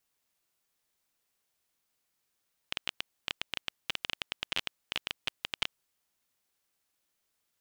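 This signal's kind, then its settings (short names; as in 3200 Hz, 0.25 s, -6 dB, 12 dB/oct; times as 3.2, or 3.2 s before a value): random clicks 13/s -13 dBFS 3.14 s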